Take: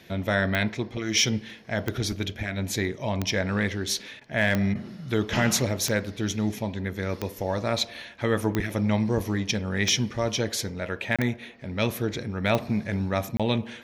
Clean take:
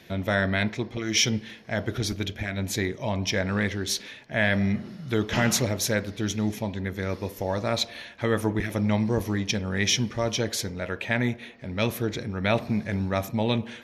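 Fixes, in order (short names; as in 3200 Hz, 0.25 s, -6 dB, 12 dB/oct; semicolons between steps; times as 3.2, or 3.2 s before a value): clip repair -11.5 dBFS; de-click; interpolate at 11.16/13.37, 26 ms; interpolate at 4.2/4.74, 11 ms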